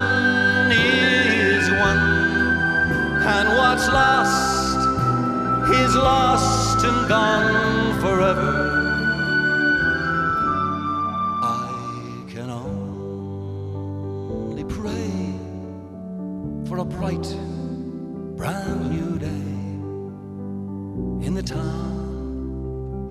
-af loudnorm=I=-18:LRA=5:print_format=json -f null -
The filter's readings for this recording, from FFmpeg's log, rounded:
"input_i" : "-20.9",
"input_tp" : "-4.4",
"input_lra" : "11.8",
"input_thresh" : "-31.3",